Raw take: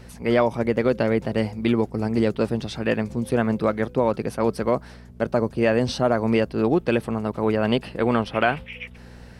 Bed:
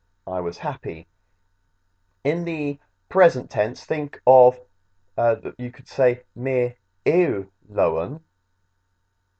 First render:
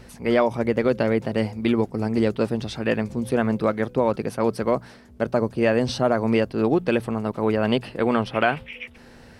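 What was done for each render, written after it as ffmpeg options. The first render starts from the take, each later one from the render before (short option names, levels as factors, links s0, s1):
-af "bandreject=f=60:t=h:w=4,bandreject=f=120:t=h:w=4,bandreject=f=180:t=h:w=4"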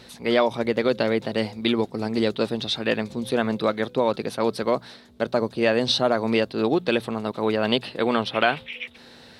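-af "highpass=f=210:p=1,equalizer=f=3800:t=o:w=0.48:g=14"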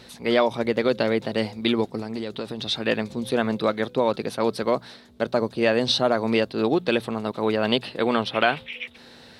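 -filter_complex "[0:a]asettb=1/sr,asplit=3[s0][s1][s2];[s0]atrim=end=1.994[s3];[s1]atrim=start=1.99:end=2.66,asetpts=PTS-STARTPTS,afade=t=in:d=0.004:c=qsin,afade=t=out:st=0.666:d=0.004:c=qsin,acompressor=threshold=0.0501:ratio=6:attack=3.2:release=140:knee=1:detection=peak[s4];[s2]atrim=start=2.656[s5];[s3][s4]acrossfade=d=0.004:c1=hsin:c2=qsin[s6];[s6][s5]acrossfade=d=0.004:c1=qsin:c2=hsin"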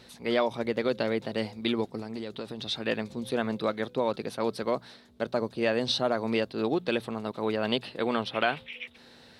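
-af "volume=0.501"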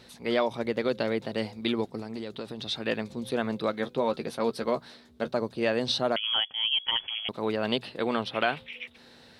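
-filter_complex "[0:a]asettb=1/sr,asplit=3[s0][s1][s2];[s0]atrim=end=3.724[s3];[s1]atrim=start=3.72:end=5.31,asetpts=PTS-STARTPTS,afade=t=in:d=0.004:c=qsin,afade=t=out:st=1.586:d=0.004:c=qsin,asplit=2[s4][s5];[s5]adelay=13,volume=0.398[s6];[s4][s6]amix=inputs=2:normalize=0,atrim=end_sample=70119[s7];[s2]atrim=start=5.306[s8];[s3][s7]acrossfade=d=0.004:c1=hsin:c2=qsin[s9];[s9][s8]acrossfade=d=0.004:c1=qsin:c2=hsin,asettb=1/sr,asplit=3[s10][s11][s12];[s10]atrim=end=6.164[s13];[s11]atrim=start=6.16:end=7.29,asetpts=PTS-STARTPTS,afade=t=in:d=0.004:c=qsin,afade=t=out:st=1.126:d=0.004:c=qsin,lowpass=f=3000:t=q:w=0.5098,lowpass=f=3000:t=q:w=0.6013,lowpass=f=3000:t=q:w=0.9,lowpass=f=3000:t=q:w=2.563,afreqshift=-3500[s14];[s12]atrim=start=7.286[s15];[s13][s14]acrossfade=d=0.004:c1=hsin:c2=qsin[s16];[s16][s15]acrossfade=d=0.004:c1=qsin:c2=hsin"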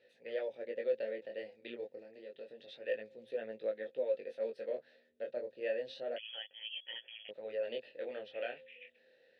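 -filter_complex "[0:a]asplit=3[s0][s1][s2];[s0]bandpass=f=530:t=q:w=8,volume=1[s3];[s1]bandpass=f=1840:t=q:w=8,volume=0.501[s4];[s2]bandpass=f=2480:t=q:w=8,volume=0.355[s5];[s3][s4][s5]amix=inputs=3:normalize=0,flanger=delay=18:depth=6.8:speed=0.29"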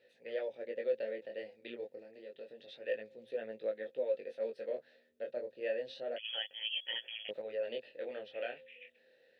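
-filter_complex "[0:a]asettb=1/sr,asplit=3[s0][s1][s2];[s0]atrim=end=6.244[s3];[s1]atrim=start=6.24:end=7.42,asetpts=PTS-STARTPTS,afade=t=in:d=0.004:c=qsin,afade=t=out:st=1.176:d=0.004:c=qsin,acontrast=57[s4];[s2]atrim=start=7.416[s5];[s3][s4]acrossfade=d=0.004:c1=hsin:c2=qsin[s6];[s6][s5]acrossfade=d=0.004:c1=qsin:c2=hsin"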